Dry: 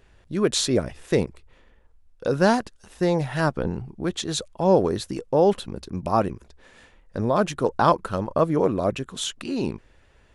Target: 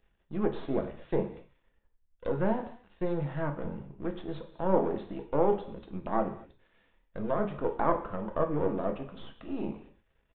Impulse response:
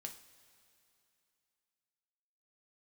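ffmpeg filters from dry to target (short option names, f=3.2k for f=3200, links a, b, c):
-filter_complex "[0:a]aeval=exprs='if(lt(val(0),0),0.251*val(0),val(0))':c=same,agate=range=-8dB:threshold=-48dB:ratio=16:detection=peak,aresample=8000,aresample=44100[a];[1:a]atrim=start_sample=2205,afade=t=out:st=0.3:d=0.01,atrim=end_sample=13671[b];[a][b]afir=irnorm=-1:irlink=0,acrossover=split=700|1400[c][d][e];[e]acompressor=threshold=-56dB:ratio=6[f];[c][d][f]amix=inputs=3:normalize=0"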